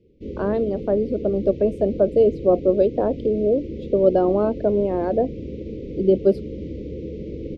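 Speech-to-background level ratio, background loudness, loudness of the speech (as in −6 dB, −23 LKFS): 12.0 dB, −33.0 LKFS, −21.0 LKFS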